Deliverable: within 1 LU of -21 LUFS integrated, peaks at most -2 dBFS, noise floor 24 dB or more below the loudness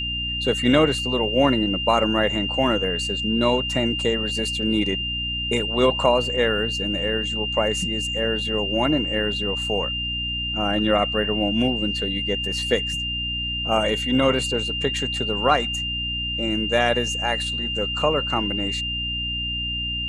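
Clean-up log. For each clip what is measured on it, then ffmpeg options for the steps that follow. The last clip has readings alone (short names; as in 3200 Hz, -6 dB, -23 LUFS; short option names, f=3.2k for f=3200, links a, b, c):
hum 60 Hz; harmonics up to 300 Hz; hum level -30 dBFS; steady tone 2800 Hz; tone level -25 dBFS; loudness -22.0 LUFS; peak -3.5 dBFS; loudness target -21.0 LUFS
-> -af "bandreject=f=60:t=h:w=4,bandreject=f=120:t=h:w=4,bandreject=f=180:t=h:w=4,bandreject=f=240:t=h:w=4,bandreject=f=300:t=h:w=4"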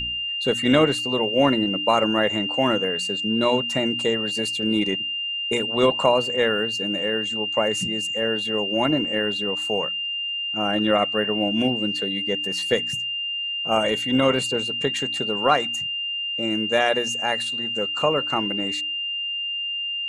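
hum none; steady tone 2800 Hz; tone level -25 dBFS
-> -af "bandreject=f=2.8k:w=30"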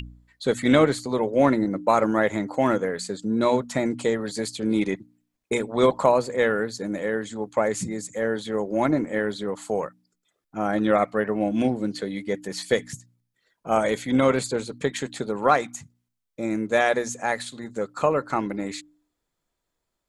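steady tone none; loudness -24.5 LUFS; peak -4.5 dBFS; loudness target -21.0 LUFS
-> -af "volume=3.5dB,alimiter=limit=-2dB:level=0:latency=1"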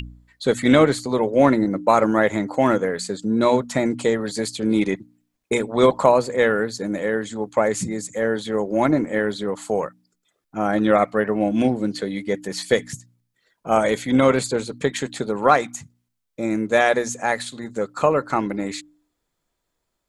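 loudness -21.0 LUFS; peak -2.0 dBFS; noise floor -77 dBFS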